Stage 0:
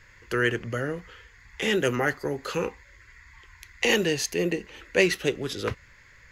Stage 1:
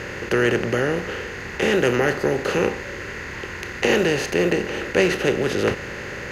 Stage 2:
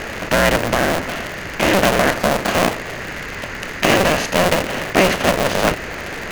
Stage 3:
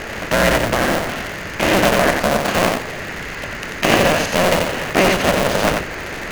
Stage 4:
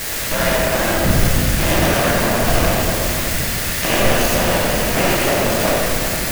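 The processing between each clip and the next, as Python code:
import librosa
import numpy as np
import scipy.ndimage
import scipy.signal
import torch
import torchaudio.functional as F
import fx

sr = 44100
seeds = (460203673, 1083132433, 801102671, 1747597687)

y1 = fx.bin_compress(x, sr, power=0.4)
y1 = fx.high_shelf(y1, sr, hz=2300.0, db=-9.0)
y1 = F.gain(torch.from_numpy(y1), 1.5).numpy()
y2 = fx.cycle_switch(y1, sr, every=2, mode='inverted')
y2 = F.gain(torch.from_numpy(y2), 4.0).numpy()
y3 = y2 + 10.0 ** (-4.5 / 20.0) * np.pad(y2, (int(90 * sr / 1000.0), 0))[:len(y2)]
y3 = F.gain(torch.from_numpy(y3), -1.0).numpy()
y4 = y3 + 0.5 * 10.0 ** (-8.0 / 20.0) * np.diff(np.sign(y3), prepend=np.sign(y3[:1]))
y4 = fx.dmg_wind(y4, sr, seeds[0], corner_hz=110.0, level_db=-22.0)
y4 = fx.room_shoebox(y4, sr, seeds[1], volume_m3=140.0, walls='hard', distance_m=0.66)
y4 = F.gain(torch.from_numpy(y4), -7.5).numpy()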